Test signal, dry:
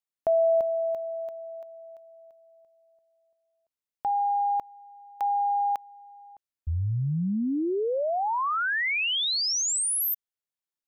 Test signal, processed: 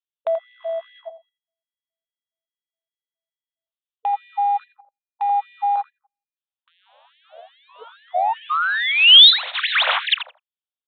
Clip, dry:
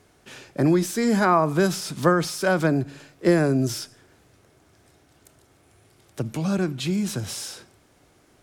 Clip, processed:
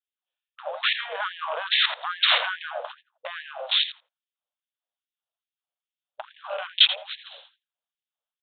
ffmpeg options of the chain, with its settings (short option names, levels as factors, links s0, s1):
-filter_complex "[0:a]aeval=exprs='val(0)+0.5*0.0266*sgn(val(0))':c=same,agate=range=0.002:threshold=0.0447:ratio=16:release=192:detection=rms,afwtdn=0.02,acompressor=threshold=0.0251:ratio=8:attack=0.14:release=34:knee=1:detection=peak,aexciter=amount=13.4:drive=1.4:freq=3100,adynamicsmooth=sensitivity=1.5:basefreq=2600,asplit=2[s0][s1];[s1]adelay=84,lowpass=f=1100:p=1,volume=0.668,asplit=2[s2][s3];[s3]adelay=84,lowpass=f=1100:p=1,volume=0.24,asplit=2[s4][s5];[s5]adelay=84,lowpass=f=1100:p=1,volume=0.24[s6];[s0][s2][s4][s6]amix=inputs=4:normalize=0,aresample=8000,aresample=44100,alimiter=level_in=5.96:limit=0.891:release=50:level=0:latency=1,afftfilt=real='re*gte(b*sr/1024,460*pow(1700/460,0.5+0.5*sin(2*PI*2.4*pts/sr)))':imag='im*gte(b*sr/1024,460*pow(1700/460,0.5+0.5*sin(2*PI*2.4*pts/sr)))':win_size=1024:overlap=0.75,volume=0.891"